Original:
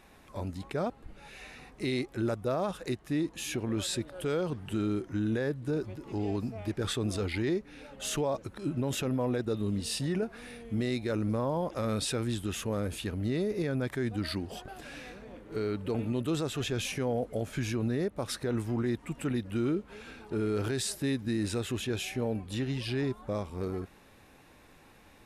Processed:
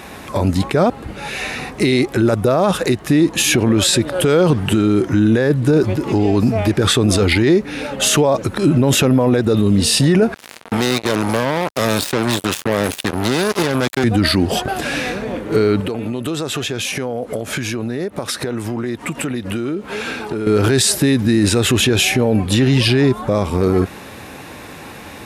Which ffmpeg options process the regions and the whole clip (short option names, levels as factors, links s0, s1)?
-filter_complex "[0:a]asettb=1/sr,asplit=3[s0][s1][s2];[s0]atrim=end=10.344[s3];[s1]atrim=start=10.34:end=14.04,asetpts=PTS-STARTPTS,afade=t=in:d=0.004:c=qsin,afade=t=out:st=3.696:d=0.004:c=qsin,acrossover=split=110|570|3100[s4][s5][s6][s7];[s4]acompressor=threshold=0.00794:ratio=3[s8];[s5]acompressor=threshold=0.01:ratio=3[s9];[s6]acompressor=threshold=0.00282:ratio=3[s10];[s7]acompressor=threshold=0.00398:ratio=3[s11];[s8][s9][s10][s11]amix=inputs=4:normalize=0,acrusher=bits=5:mix=0:aa=0.5,lowshelf=f=240:g=-9.5[s12];[s2]atrim=start=14.036[s13];[s3][s12]acrossfade=d=0.004:c1=hsin:c2=qsin[s14];[s14][s13]acrossfade=d=0.004:c1=qsin:c2=hsin,asettb=1/sr,asplit=3[s15][s16][s17];[s15]atrim=end=15.804[s18];[s16]atrim=start=15.8:end=20.47,asetpts=PTS-STARTPTS,afade=t=in:d=0.004:c=qsin,afade=t=out:st=4.666:d=0.004:c=qsin,highpass=45,lowshelf=f=190:g=-7,acompressor=threshold=0.00794:ratio=10:attack=3.2:release=140:knee=1:detection=peak[s19];[s17]atrim=start=20.466[s20];[s18][s19]acrossfade=d=0.004:c1=hsin:c2=qsin[s21];[s21][s20]acrossfade=d=0.004:c1=qsin:c2=hsin,highpass=76,alimiter=level_in=25.1:limit=0.891:release=50:level=0:latency=1,volume=0.596"